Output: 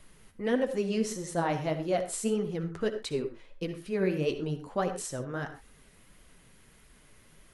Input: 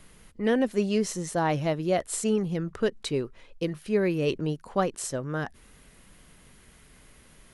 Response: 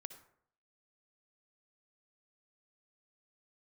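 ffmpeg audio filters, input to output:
-filter_complex "[0:a]flanger=delay=1.5:depth=9.9:regen=39:speed=1.6:shape=triangular[a];[1:a]atrim=start_sample=2205,afade=t=out:st=0.19:d=0.01,atrim=end_sample=8820[b];[a][b]afir=irnorm=-1:irlink=0,volume=5dB"

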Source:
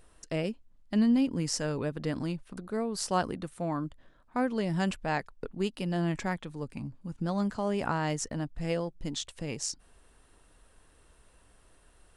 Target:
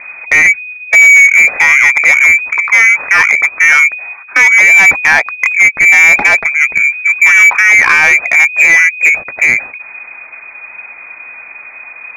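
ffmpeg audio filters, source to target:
-af "lowpass=f=2.1k:t=q:w=0.5098,lowpass=f=2.1k:t=q:w=0.6013,lowpass=f=2.1k:t=q:w=0.9,lowpass=f=2.1k:t=q:w=2.563,afreqshift=-2500,apsyclip=25dB,acontrast=35,volume=-1dB"

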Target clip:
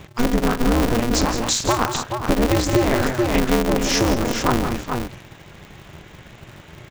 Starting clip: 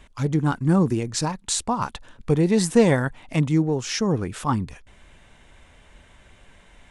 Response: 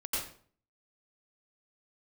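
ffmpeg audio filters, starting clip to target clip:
-af "asetnsamples=n=441:p=0,asendcmd='0.88 equalizer g 3.5',equalizer=f=110:t=o:w=0.2:g=15,aecho=1:1:42|161|189|429:0.141|0.282|0.158|0.316,acompressor=threshold=-22dB:ratio=6,aresample=16000,aresample=44100,aeval=exprs='val(0)*sgn(sin(2*PI*120*n/s))':c=same,volume=7.5dB"

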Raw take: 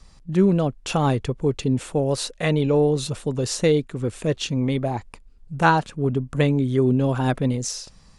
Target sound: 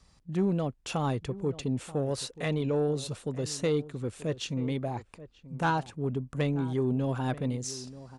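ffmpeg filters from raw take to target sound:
-filter_complex "[0:a]highpass=47,asoftclip=type=tanh:threshold=-10.5dB,asplit=2[a][b];[b]adelay=932.9,volume=-16dB,highshelf=f=4k:g=-21[c];[a][c]amix=inputs=2:normalize=0,volume=-8dB"

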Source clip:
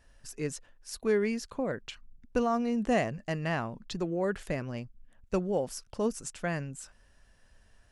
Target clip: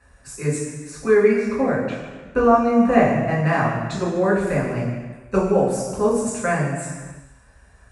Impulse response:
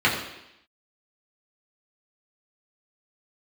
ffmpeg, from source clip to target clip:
-filter_complex "[0:a]asettb=1/sr,asplit=3[a][b][c];[a]atrim=end=0.904[d];[b]atrim=start=0.9:end=3.34,asetpts=PTS-STARTPTS,afade=t=in:d=0.004:c=qsin,afade=t=out:st=2.436:d=0.004:c=qsin,acrossover=split=3700[e][f];[f]acompressor=threshold=-56dB:ratio=4:attack=1:release=60[g];[e][g]amix=inputs=2:normalize=0[h];[c]atrim=start=3.336[i];[d][h]acrossfade=d=0.004:c1=hsin:c2=qsin[j];[j][i]acrossfade=d=0.004:c1=qsin:c2=hsin,equalizer=f=8.4k:t=o:w=1.1:g=14[k];[1:a]atrim=start_sample=2205,afade=t=out:st=0.41:d=0.01,atrim=end_sample=18522,asetrate=23814,aresample=44100[l];[k][l]afir=irnorm=-1:irlink=0,volume=-10.5dB"

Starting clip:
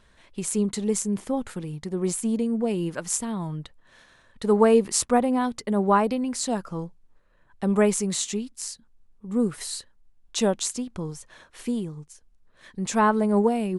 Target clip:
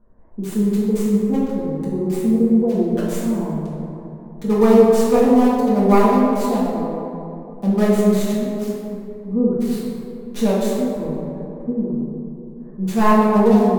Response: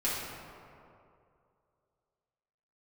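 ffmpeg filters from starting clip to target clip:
-filter_complex "[0:a]highshelf=f=5.4k:g=-11,acrossover=split=990[a][b];[b]acrusher=bits=3:dc=4:mix=0:aa=0.000001[c];[a][c]amix=inputs=2:normalize=0[d];[1:a]atrim=start_sample=2205,asetrate=37485,aresample=44100[e];[d][e]afir=irnorm=-1:irlink=0,volume=-2dB"

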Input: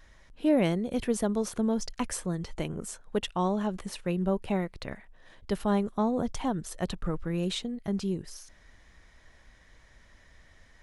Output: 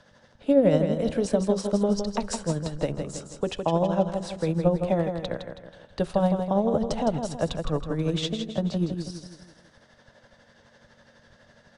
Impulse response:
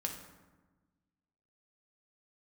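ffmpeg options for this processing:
-filter_complex "[0:a]asplit=2[a][b];[1:a]atrim=start_sample=2205[c];[b][c]afir=irnorm=-1:irlink=0,volume=-19.5dB[d];[a][d]amix=inputs=2:normalize=0,aeval=exprs='val(0)+0.00178*(sin(2*PI*50*n/s)+sin(2*PI*2*50*n/s)/2+sin(2*PI*3*50*n/s)/3+sin(2*PI*4*50*n/s)/4+sin(2*PI*5*50*n/s)/5)':c=same,equalizer=f=100:t=o:w=0.67:g=4,equalizer=f=630:t=o:w=0.67:g=9,equalizer=f=2.5k:t=o:w=0.67:g=-5,acrossover=split=470[e][f];[f]acompressor=threshold=-24dB:ratio=6[g];[e][g]amix=inputs=2:normalize=0,acrossover=split=160|1200[h][i][j];[h]aeval=exprs='sgn(val(0))*max(abs(val(0))-0.00398,0)':c=same[k];[k][i][j]amix=inputs=3:normalize=0,asetrate=40517,aresample=44100,lowpass=7.7k,equalizer=f=4k:t=o:w=0.4:g=4,bandreject=f=370:w=12,aecho=1:1:161|322|483|644|805:0.447|0.201|0.0905|0.0407|0.0183,tremolo=f=12:d=0.48,volume=3.5dB"

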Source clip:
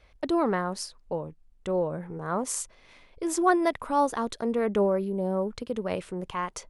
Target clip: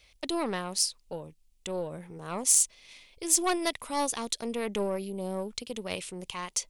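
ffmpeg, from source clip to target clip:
-af "aeval=exprs='0.316*(cos(1*acos(clip(val(0)/0.316,-1,1)))-cos(1*PI/2))+0.0282*(cos(4*acos(clip(val(0)/0.316,-1,1)))-cos(4*PI/2))':c=same,aexciter=amount=4.4:drive=6.7:freq=2.2k,volume=-7dB"

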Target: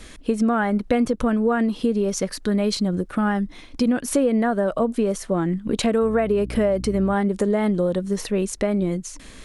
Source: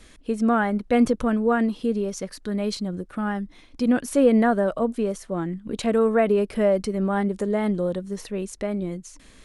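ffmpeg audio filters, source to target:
-filter_complex "[0:a]asettb=1/sr,asplit=3[a][b][c];[a]atrim=end=6.024[d];[b]atrim=start=6.02:end=7.14,asetpts=PTS-STARTPTS,afade=t=in:d=0.004:c=qsin,afade=t=out:st=1.116:d=0.004:c=qsin,aeval=exprs='val(0)+0.0158*(sin(2*PI*60*n/s)+sin(2*PI*2*60*n/s)/2+sin(2*PI*3*60*n/s)/3+sin(2*PI*4*60*n/s)/4+sin(2*PI*5*60*n/s)/5)':c=same[e];[c]atrim=start=7.136[f];[d][e]acrossfade=d=0.004:c1=hsin:c2=qsin[g];[g][f]acrossfade=d=0.004:c1=qsin:c2=hsin,acompressor=threshold=-25dB:ratio=6,volume=8dB"

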